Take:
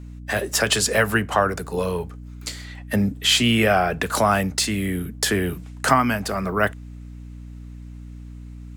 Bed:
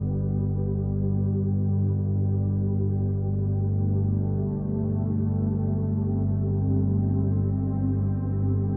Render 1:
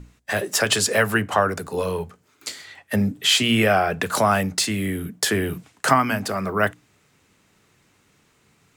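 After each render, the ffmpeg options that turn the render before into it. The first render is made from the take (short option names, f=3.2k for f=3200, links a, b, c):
-af "bandreject=f=60:t=h:w=6,bandreject=f=120:t=h:w=6,bandreject=f=180:t=h:w=6,bandreject=f=240:t=h:w=6,bandreject=f=300:t=h:w=6"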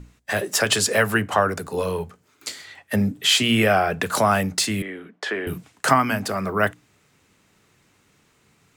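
-filter_complex "[0:a]asettb=1/sr,asplit=3[a][b][c];[a]atrim=end=4.824[d];[b]atrim=start=4.82:end=5.47,asetpts=PTS-STARTPTS,afade=t=in:d=0.004:c=qsin,afade=t=out:st=0.646:d=0.004:c=qsin,highpass=440,lowpass=2.5k[e];[c]atrim=start=5.466[f];[d][e]acrossfade=d=0.004:c1=hsin:c2=qsin[g];[g][f]acrossfade=d=0.004:c1=qsin:c2=hsin"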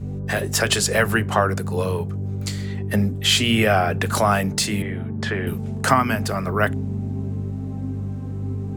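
-filter_complex "[1:a]volume=-3dB[a];[0:a][a]amix=inputs=2:normalize=0"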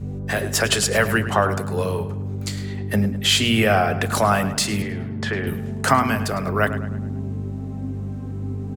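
-filter_complex "[0:a]asplit=2[a][b];[b]adelay=105,lowpass=f=4.8k:p=1,volume=-12dB,asplit=2[c][d];[d]adelay=105,lowpass=f=4.8k:p=1,volume=0.48,asplit=2[e][f];[f]adelay=105,lowpass=f=4.8k:p=1,volume=0.48,asplit=2[g][h];[h]adelay=105,lowpass=f=4.8k:p=1,volume=0.48,asplit=2[i][j];[j]adelay=105,lowpass=f=4.8k:p=1,volume=0.48[k];[a][c][e][g][i][k]amix=inputs=6:normalize=0"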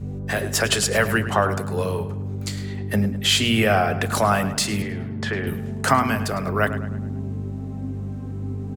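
-af "volume=-1dB"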